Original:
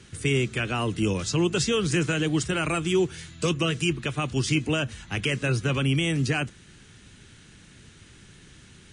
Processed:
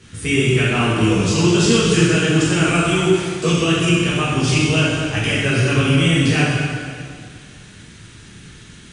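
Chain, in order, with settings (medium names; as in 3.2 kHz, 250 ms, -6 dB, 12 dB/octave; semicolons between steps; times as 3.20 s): plate-style reverb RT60 2.1 s, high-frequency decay 0.9×, DRR -9 dB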